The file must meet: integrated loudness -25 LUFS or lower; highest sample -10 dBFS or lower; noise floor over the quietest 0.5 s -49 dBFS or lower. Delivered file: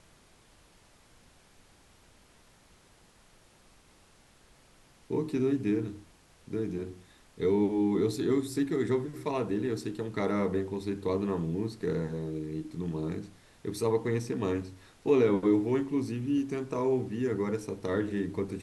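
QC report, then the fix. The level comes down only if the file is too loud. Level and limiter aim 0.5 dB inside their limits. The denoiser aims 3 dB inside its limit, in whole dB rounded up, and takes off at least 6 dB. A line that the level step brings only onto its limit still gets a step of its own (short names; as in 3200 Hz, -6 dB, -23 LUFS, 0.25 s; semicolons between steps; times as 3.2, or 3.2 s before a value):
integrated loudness -31.0 LUFS: OK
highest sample -13.5 dBFS: OK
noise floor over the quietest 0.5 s -60 dBFS: OK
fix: none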